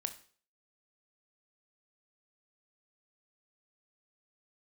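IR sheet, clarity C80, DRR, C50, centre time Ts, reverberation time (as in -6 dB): 17.0 dB, 8.0 dB, 13.0 dB, 7 ms, 0.45 s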